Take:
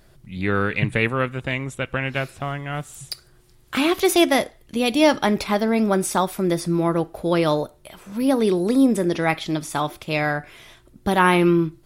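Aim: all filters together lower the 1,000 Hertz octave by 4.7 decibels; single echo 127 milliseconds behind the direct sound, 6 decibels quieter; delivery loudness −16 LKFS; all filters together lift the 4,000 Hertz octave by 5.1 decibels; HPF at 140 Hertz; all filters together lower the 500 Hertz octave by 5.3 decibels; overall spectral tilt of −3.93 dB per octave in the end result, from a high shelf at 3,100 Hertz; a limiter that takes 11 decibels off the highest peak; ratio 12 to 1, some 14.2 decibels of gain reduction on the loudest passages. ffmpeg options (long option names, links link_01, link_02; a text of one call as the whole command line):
ffmpeg -i in.wav -af "highpass=140,equalizer=frequency=500:width_type=o:gain=-6.5,equalizer=frequency=1000:width_type=o:gain=-4.5,highshelf=frequency=3100:gain=4,equalizer=frequency=4000:width_type=o:gain=4,acompressor=threshold=-28dB:ratio=12,alimiter=limit=-23.5dB:level=0:latency=1,aecho=1:1:127:0.501,volume=17.5dB" out.wav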